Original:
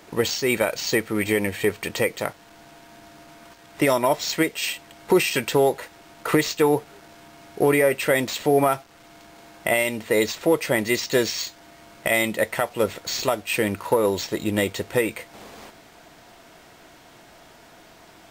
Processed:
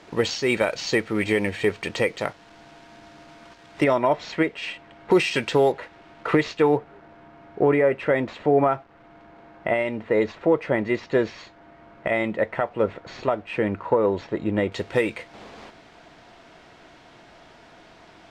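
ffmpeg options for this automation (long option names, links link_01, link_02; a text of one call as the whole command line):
ffmpeg -i in.wav -af "asetnsamples=nb_out_samples=441:pad=0,asendcmd='3.84 lowpass f 2400;5.11 lowpass f 4800;5.72 lowpass f 2900;6.77 lowpass f 1700;14.72 lowpass f 4500',lowpass=5300" out.wav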